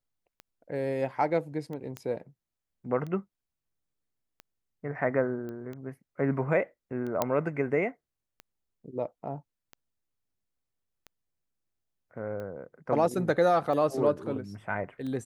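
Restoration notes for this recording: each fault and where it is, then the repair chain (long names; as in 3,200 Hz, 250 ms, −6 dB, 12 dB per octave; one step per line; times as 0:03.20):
scratch tick 45 rpm −28 dBFS
0:01.97: click −22 dBFS
0:05.49: click −29 dBFS
0:07.22: click −11 dBFS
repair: click removal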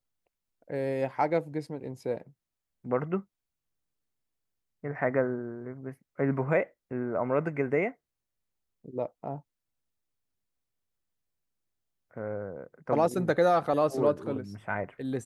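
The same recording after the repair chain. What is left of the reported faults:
0:01.97: click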